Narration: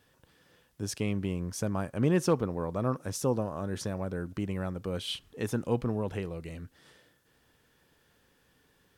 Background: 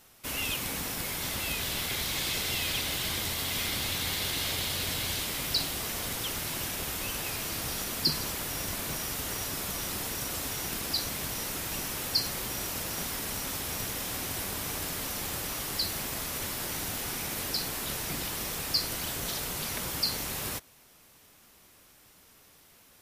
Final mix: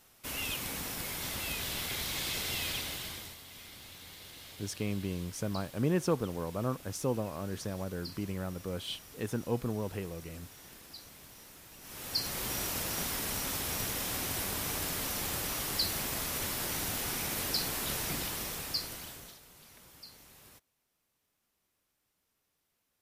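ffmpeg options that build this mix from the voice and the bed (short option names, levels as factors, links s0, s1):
-filter_complex "[0:a]adelay=3800,volume=0.668[s0];[1:a]volume=5.01,afade=t=out:st=2.66:d=0.74:silence=0.188365,afade=t=in:st=11.8:d=0.7:silence=0.125893,afade=t=out:st=18.04:d=1.35:silence=0.0841395[s1];[s0][s1]amix=inputs=2:normalize=0"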